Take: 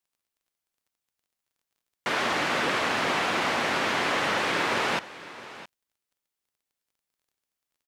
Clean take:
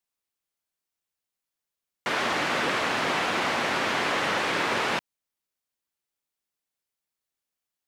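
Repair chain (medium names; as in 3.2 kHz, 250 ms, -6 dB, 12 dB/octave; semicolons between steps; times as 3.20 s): de-click; inverse comb 666 ms -16.5 dB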